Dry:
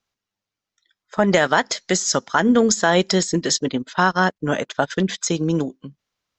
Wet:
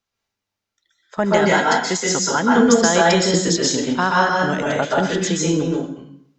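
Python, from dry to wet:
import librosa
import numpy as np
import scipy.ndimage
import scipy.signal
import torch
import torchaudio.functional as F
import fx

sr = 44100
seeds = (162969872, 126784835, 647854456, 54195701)

y = fx.notch_comb(x, sr, f0_hz=600.0, at=(1.25, 2.49))
y = fx.rev_plate(y, sr, seeds[0], rt60_s=0.65, hf_ratio=0.85, predelay_ms=115, drr_db=-4.5)
y = y * librosa.db_to_amplitude(-2.5)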